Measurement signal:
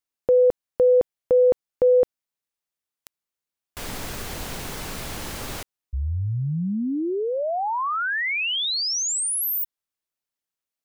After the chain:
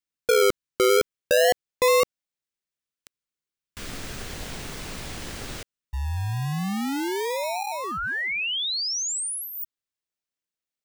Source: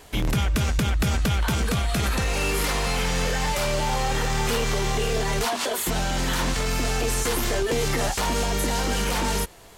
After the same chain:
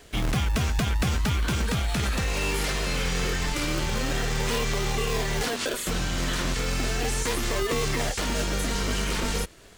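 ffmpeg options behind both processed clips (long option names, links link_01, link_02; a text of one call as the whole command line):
ffmpeg -i in.wav -filter_complex "[0:a]equalizer=frequency=13000:width=1.7:gain=-10.5,acrossover=split=1000[link_01][link_02];[link_01]acrusher=samples=39:mix=1:aa=0.000001:lfo=1:lforange=23.4:lforate=0.36[link_03];[link_03][link_02]amix=inputs=2:normalize=0,volume=-2dB" out.wav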